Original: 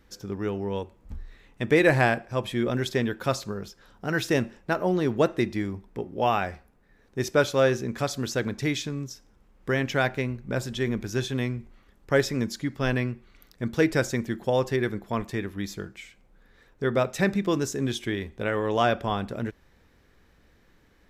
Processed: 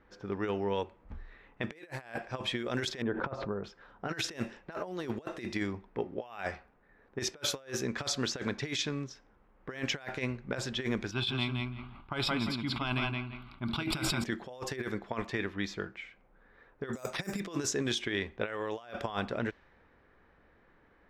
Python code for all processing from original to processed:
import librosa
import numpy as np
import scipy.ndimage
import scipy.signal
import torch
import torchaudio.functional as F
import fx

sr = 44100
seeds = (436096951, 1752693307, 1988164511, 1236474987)

y = fx.chain(x, sr, fx.lowpass(hz=1000.0, slope=12),
    fx.pre_swell(db_per_s=88.0), at=(3.02, 3.64))
y = fx.chain(y, sr, fx.fixed_phaser(hz=1800.0, stages=6),
    fx.echo_feedback(ms=170, feedback_pct=16, wet_db=-5.0),
    fx.sustainer(db_per_s=42.0), at=(11.11, 14.24))
y = fx.chain(y, sr, fx.air_absorb(metres=56.0),
    fx.resample_bad(factor=6, down='none', up='hold'), at=(16.93, 17.4))
y = fx.env_lowpass(y, sr, base_hz=1500.0, full_db=-19.5)
y = fx.low_shelf(y, sr, hz=370.0, db=-11.5)
y = fx.over_compress(y, sr, threshold_db=-34.0, ratio=-0.5)